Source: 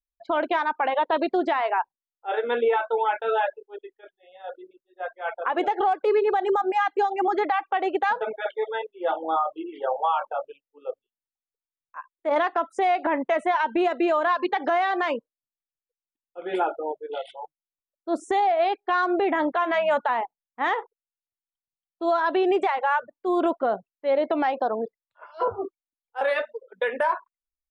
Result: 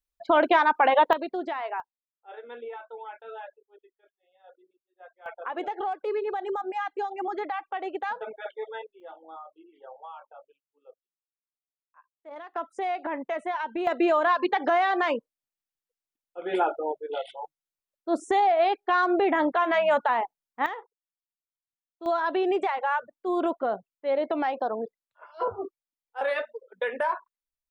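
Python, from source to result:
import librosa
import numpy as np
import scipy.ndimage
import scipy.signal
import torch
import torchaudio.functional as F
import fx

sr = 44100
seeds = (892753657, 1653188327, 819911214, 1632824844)

y = fx.gain(x, sr, db=fx.steps((0.0, 4.0), (1.13, -8.0), (1.8, -17.0), (5.26, -8.0), (9.0, -19.5), (12.54, -7.5), (13.87, 0.0), (20.66, -11.0), (22.06, -3.5)))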